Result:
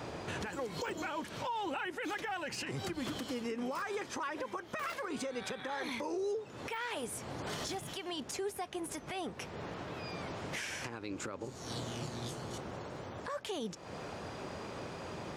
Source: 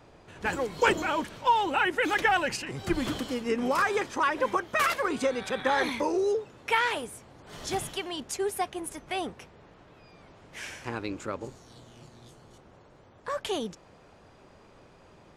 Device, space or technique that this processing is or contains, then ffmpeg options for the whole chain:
broadcast voice chain: -af "highpass=78,deesser=0.8,acompressor=threshold=-45dB:ratio=3,equalizer=f=5.3k:t=o:w=0.77:g=2,alimiter=level_in=17.5dB:limit=-24dB:level=0:latency=1:release=271,volume=-17.5dB,volume=12dB"

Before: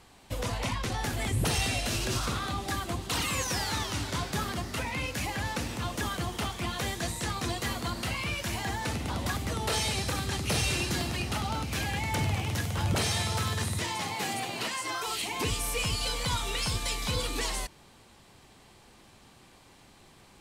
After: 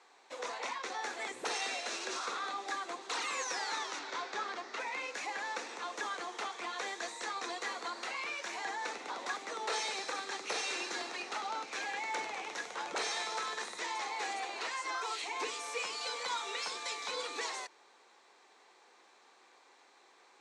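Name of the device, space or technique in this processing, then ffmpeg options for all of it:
phone speaker on a table: -filter_complex "[0:a]asettb=1/sr,asplit=3[a][b][c];[a]atrim=end=3.994[d];[b]atrim=start=3.99:end=4.8,asetpts=PTS-STARTPTS,afade=t=in:d=0.004:c=qsin,afade=t=out:st=0.806:d=0.004:c=qsin,lowpass=5.7k[e];[c]atrim=start=4.796[f];[d][e]acrossfade=d=0.004:c1=hsin:c2=qsin[g];[g][f]acrossfade=d=0.004:c1=qsin:c2=hsin,highpass=f=420:w=0.5412,highpass=f=420:w=1.3066,equalizer=f=610:t=q:w=4:g=-6,equalizer=f=3k:t=q:w=4:g=-9,equalizer=f=4.9k:t=q:w=4:g=-6,lowpass=f=6.6k:w=0.5412,lowpass=f=6.6k:w=1.3066,volume=-2dB"

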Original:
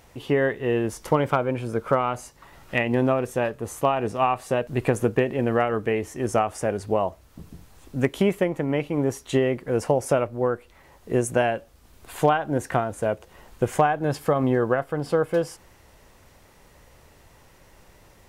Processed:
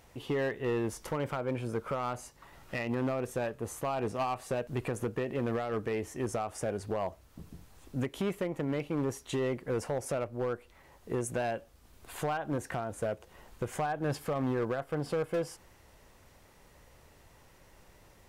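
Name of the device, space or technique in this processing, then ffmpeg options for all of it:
limiter into clipper: -af "alimiter=limit=-15dB:level=0:latency=1:release=176,asoftclip=type=hard:threshold=-20.5dB,volume=-5.5dB"

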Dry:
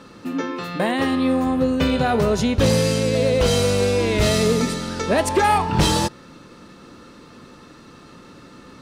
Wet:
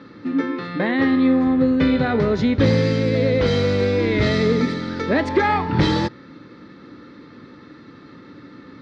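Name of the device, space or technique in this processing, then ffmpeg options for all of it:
guitar cabinet: -af "highpass=79,equalizer=f=110:t=q:w=4:g=4,equalizer=f=290:t=q:w=4:g=7,equalizer=f=690:t=q:w=4:g=-6,equalizer=f=1k:t=q:w=4:g=-4,equalizer=f=2k:t=q:w=4:g=6,equalizer=f=2.8k:t=q:w=4:g=-9,lowpass=f=4.2k:w=0.5412,lowpass=f=4.2k:w=1.3066"

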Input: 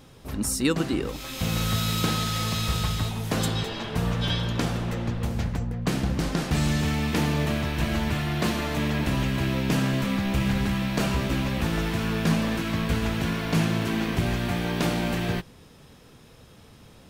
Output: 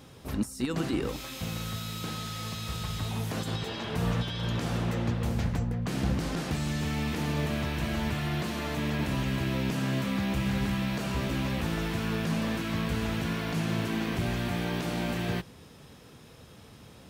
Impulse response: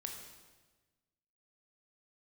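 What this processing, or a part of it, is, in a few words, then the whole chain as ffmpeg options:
de-esser from a sidechain: -filter_complex "[0:a]highpass=52,asplit=2[a][b];[b]highpass=f=6.5k:p=1,apad=whole_len=754052[c];[a][c]sidechaincompress=threshold=-43dB:ratio=8:attack=2.4:release=30"

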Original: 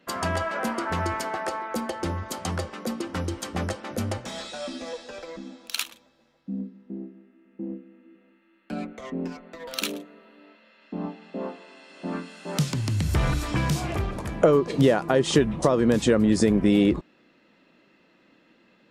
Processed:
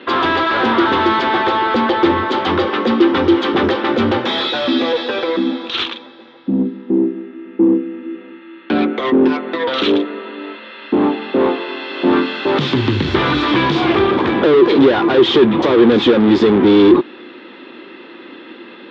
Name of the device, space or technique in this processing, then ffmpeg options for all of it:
overdrive pedal into a guitar cabinet: -filter_complex "[0:a]asplit=2[a][b];[b]highpass=f=720:p=1,volume=35dB,asoftclip=type=tanh:threshold=-4.5dB[c];[a][c]amix=inputs=2:normalize=0,lowpass=f=1.1k:p=1,volume=-6dB,highpass=97,equalizer=f=170:t=q:w=4:g=-9,equalizer=f=250:t=q:w=4:g=4,equalizer=f=360:t=q:w=4:g=9,equalizer=f=640:t=q:w=4:g=-9,equalizer=f=3.5k:t=q:w=4:g=10,lowpass=f=4.4k:w=0.5412,lowpass=f=4.4k:w=1.3066"

